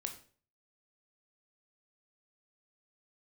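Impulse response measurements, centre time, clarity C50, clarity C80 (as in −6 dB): 13 ms, 10.5 dB, 14.5 dB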